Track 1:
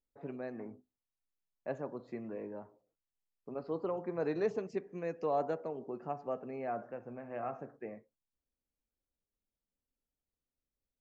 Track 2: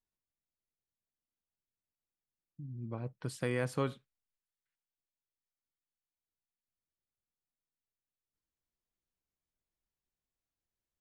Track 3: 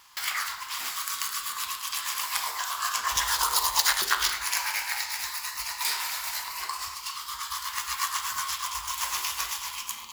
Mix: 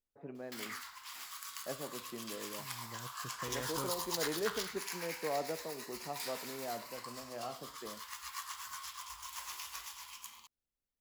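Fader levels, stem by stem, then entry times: -4.0 dB, -10.5 dB, -14.5 dB; 0.00 s, 0.00 s, 0.35 s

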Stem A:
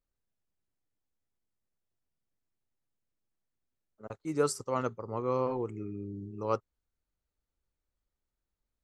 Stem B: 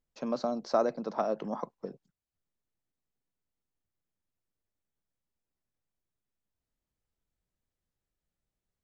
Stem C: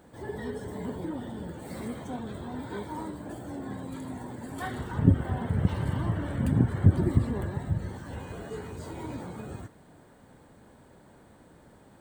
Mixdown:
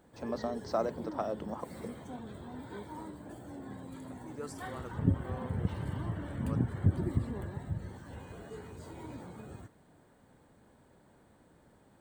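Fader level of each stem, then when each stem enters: -14.5 dB, -4.5 dB, -7.5 dB; 0.00 s, 0.00 s, 0.00 s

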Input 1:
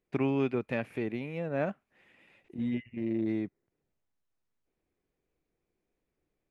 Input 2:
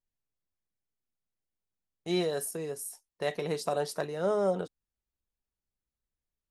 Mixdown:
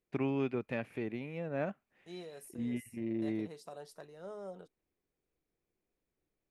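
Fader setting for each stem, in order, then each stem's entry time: -4.5 dB, -17.5 dB; 0.00 s, 0.00 s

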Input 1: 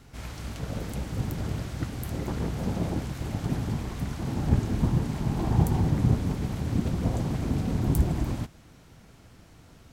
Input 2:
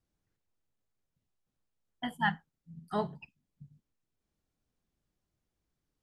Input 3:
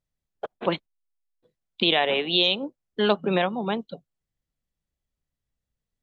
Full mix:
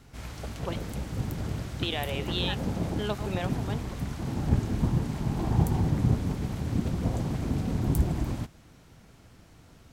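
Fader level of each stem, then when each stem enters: -1.5 dB, -10.0 dB, -11.0 dB; 0.00 s, 0.25 s, 0.00 s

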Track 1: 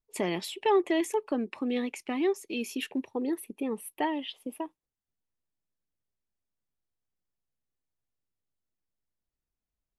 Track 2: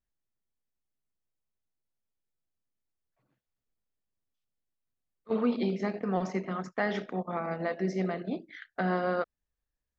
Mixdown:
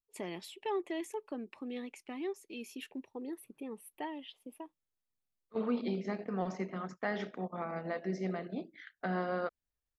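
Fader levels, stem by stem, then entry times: -11.0 dB, -5.5 dB; 0.00 s, 0.25 s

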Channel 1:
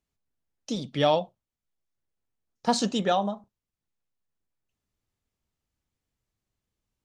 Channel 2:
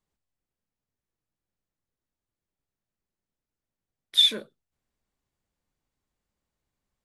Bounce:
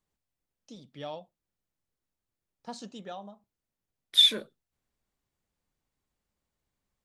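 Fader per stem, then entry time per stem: -17.0 dB, -0.5 dB; 0.00 s, 0.00 s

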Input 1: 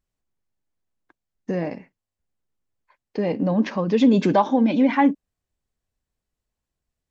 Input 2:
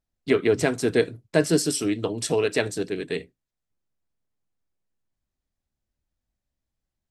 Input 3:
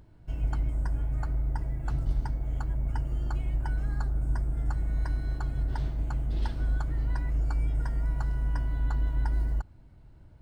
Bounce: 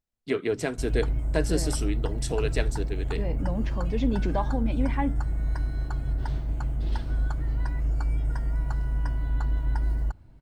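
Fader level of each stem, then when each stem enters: -11.0 dB, -6.5 dB, +1.5 dB; 0.00 s, 0.00 s, 0.50 s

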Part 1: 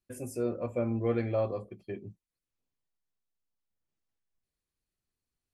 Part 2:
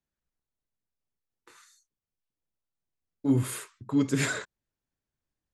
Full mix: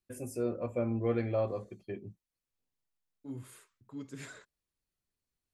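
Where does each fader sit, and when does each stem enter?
-1.5 dB, -18.5 dB; 0.00 s, 0.00 s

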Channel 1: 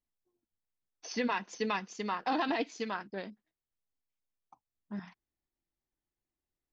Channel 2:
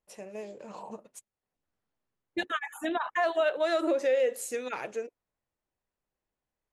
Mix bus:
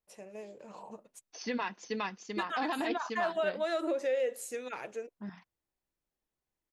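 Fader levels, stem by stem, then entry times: -2.5 dB, -5.0 dB; 0.30 s, 0.00 s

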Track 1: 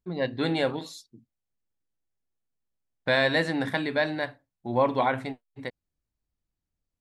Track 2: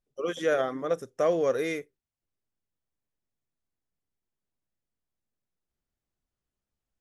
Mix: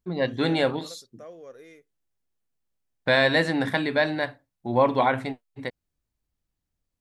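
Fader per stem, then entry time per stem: +3.0 dB, -19.0 dB; 0.00 s, 0.00 s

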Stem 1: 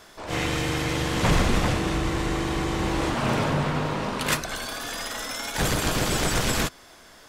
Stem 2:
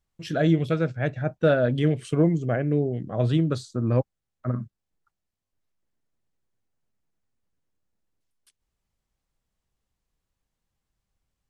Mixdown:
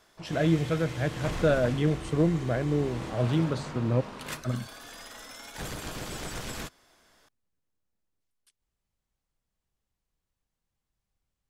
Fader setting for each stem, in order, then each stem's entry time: -13.0 dB, -3.5 dB; 0.00 s, 0.00 s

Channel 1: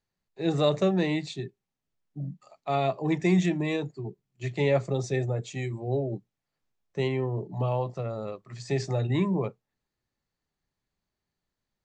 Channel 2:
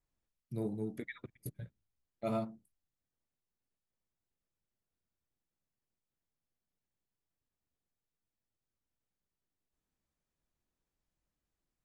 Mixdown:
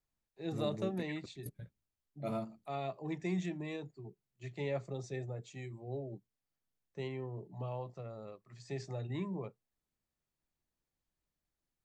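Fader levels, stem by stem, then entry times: -13.0 dB, -3.0 dB; 0.00 s, 0.00 s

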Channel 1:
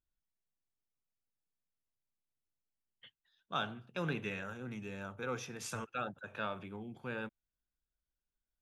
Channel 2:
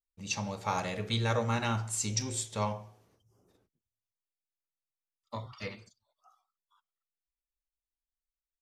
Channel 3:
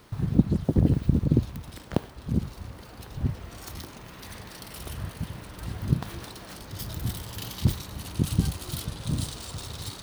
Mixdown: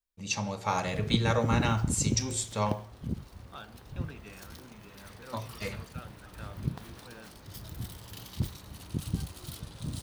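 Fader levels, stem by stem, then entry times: -10.0 dB, +2.5 dB, -8.5 dB; 0.00 s, 0.00 s, 0.75 s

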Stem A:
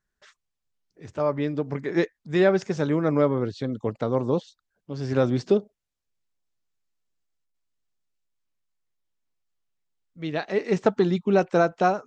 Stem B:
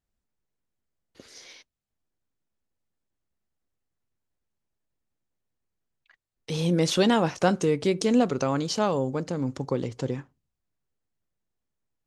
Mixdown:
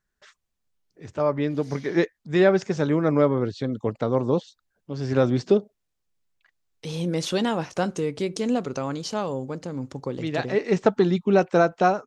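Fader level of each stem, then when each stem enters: +1.5 dB, -3.0 dB; 0.00 s, 0.35 s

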